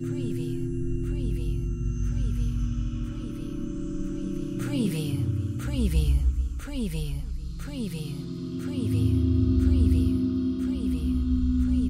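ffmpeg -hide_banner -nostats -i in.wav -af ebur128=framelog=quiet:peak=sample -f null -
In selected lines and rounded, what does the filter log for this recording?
Integrated loudness:
  I:         -28.0 LUFS
  Threshold: -38.0 LUFS
Loudness range:
  LRA:         5.8 LU
  Threshold: -48.3 LUFS
  LRA low:   -30.9 LUFS
  LRA high:  -25.1 LUFS
Sample peak:
  Peak:      -11.7 dBFS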